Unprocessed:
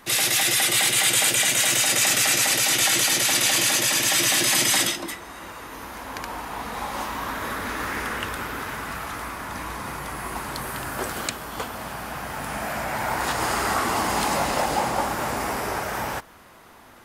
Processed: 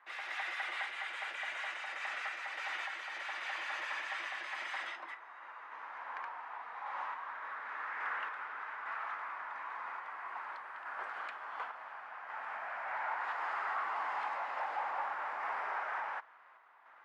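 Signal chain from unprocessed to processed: random-step tremolo; soft clip -22 dBFS, distortion -11 dB; Butterworth band-pass 1300 Hz, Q 0.99; gain -5 dB

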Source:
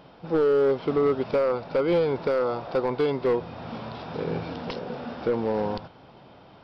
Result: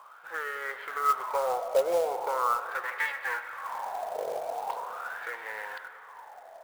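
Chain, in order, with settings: 2.83–3.67 minimum comb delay 3.6 ms; high shelf 2700 Hz +2.5 dB; wah 0.41 Hz 630–1900 Hz, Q 8.4; ten-band EQ 125 Hz -11 dB, 250 Hz -11 dB, 500 Hz +5 dB, 1000 Hz +6 dB, 2000 Hz +6 dB, 4000 Hz +8 dB; short-mantissa float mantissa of 2-bit; spring tank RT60 2.8 s, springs 32/41/46 ms, chirp 65 ms, DRR 10 dB; gain +6 dB

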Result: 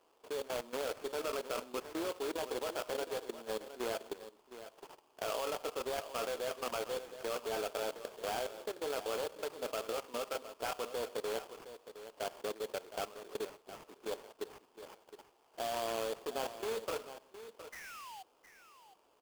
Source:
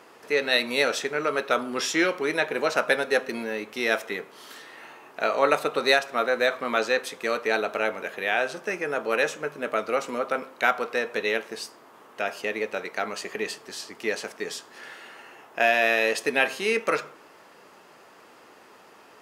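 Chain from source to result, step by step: median filter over 25 samples; HPF 350 Hz 12 dB/oct; bell 1000 Hz +2.5 dB 0.53 oct; notch 2000 Hz, Q 7; level quantiser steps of 17 dB; painted sound fall, 17.72–18.23, 730–2100 Hz -46 dBFS; sample-rate reducer 3900 Hz, jitter 20%; echo 0.714 s -12.5 dB; gain -2.5 dB

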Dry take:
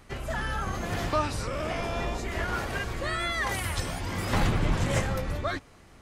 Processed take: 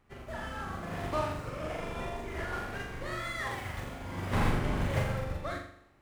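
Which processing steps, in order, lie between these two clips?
median filter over 9 samples; notches 50/100 Hz; on a send: flutter echo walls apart 7.2 m, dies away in 0.85 s; on the sum: upward expander 1.5:1, over -39 dBFS; gain -4 dB

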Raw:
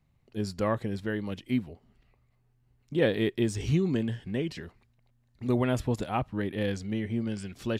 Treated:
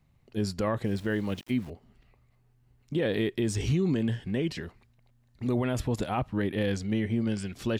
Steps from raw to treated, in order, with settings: 0.84–1.7 sample gate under -50 dBFS; limiter -22.5 dBFS, peak gain reduction 9.5 dB; gain +3.5 dB

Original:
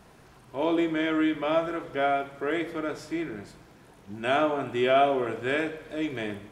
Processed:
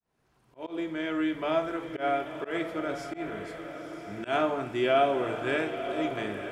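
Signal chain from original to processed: opening faded in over 1.51 s; diffused feedback echo 0.97 s, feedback 50%, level -9 dB; auto swell 0.108 s; gain -2 dB

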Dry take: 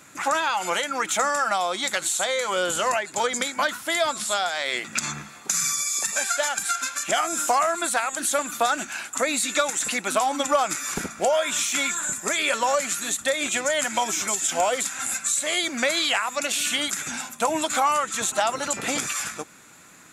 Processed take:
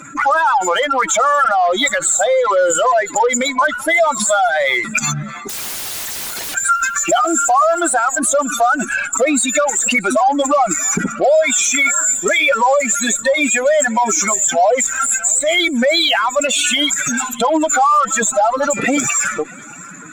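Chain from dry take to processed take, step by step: spectral contrast raised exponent 2.6; in parallel at +2 dB: compressor 6:1, threshold -31 dBFS, peak gain reduction 14 dB; on the sum: limiter -14.5 dBFS, peak gain reduction 7 dB; 5.49–6.55 wrapped overs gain 28 dB; added harmonics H 7 -44 dB, 8 -32 dB, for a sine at -14.5 dBFS; on a send: thinning echo 0.634 s, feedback 41%, high-pass 850 Hz, level -22 dB; on the sum: gain +8 dB

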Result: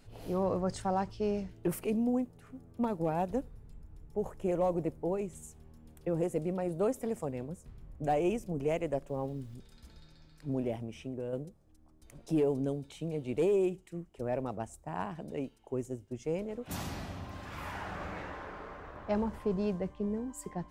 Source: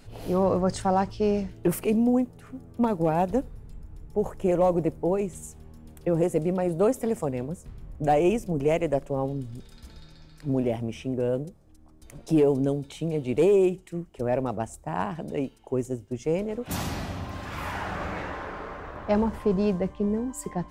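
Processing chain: 9.06–9.54 added noise pink -62 dBFS; 10.75–11.33 compressor 2.5:1, threshold -28 dBFS, peak gain reduction 4.5 dB; gain -8 dB

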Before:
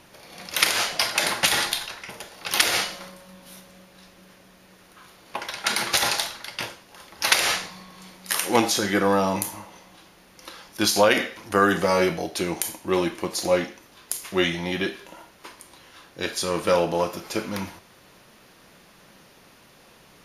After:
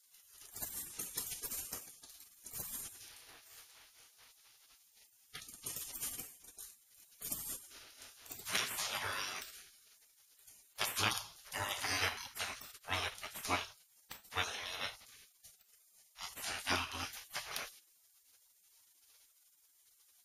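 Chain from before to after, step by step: spectral gate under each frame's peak -20 dB weak; gain -3 dB

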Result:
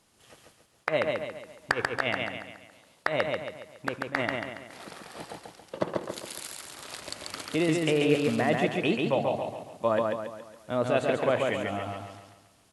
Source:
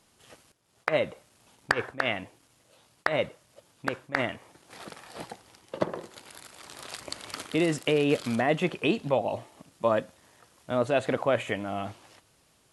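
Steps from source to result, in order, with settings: 6.09–6.57 high shelf 2200 Hz +11 dB; on a send: feedback echo 0.139 s, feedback 45%, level -3 dB; on the sum: gain -1.5 dB

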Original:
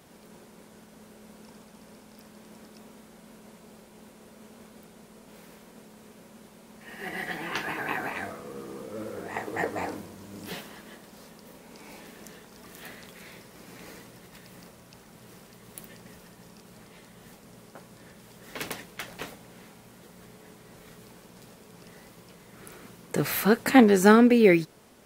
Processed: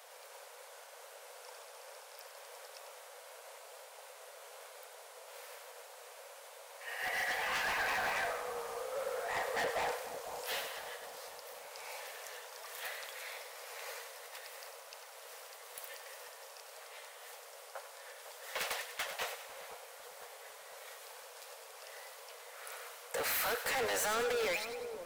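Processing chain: steep high-pass 470 Hz 96 dB/oct; limiter -20 dBFS, peak gain reduction 10.5 dB; hard clip -35 dBFS, distortion -5 dB; split-band echo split 1100 Hz, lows 0.501 s, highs 97 ms, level -9.5 dB; gain +2.5 dB

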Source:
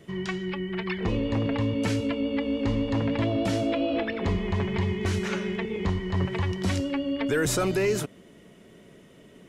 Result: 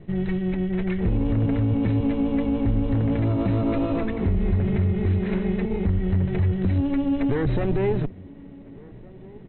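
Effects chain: minimum comb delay 0.45 ms; Chebyshev low-pass 4000 Hz, order 10; tilt -3.5 dB/oct; limiter -14.5 dBFS, peak gain reduction 8 dB; outdoor echo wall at 250 m, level -22 dB

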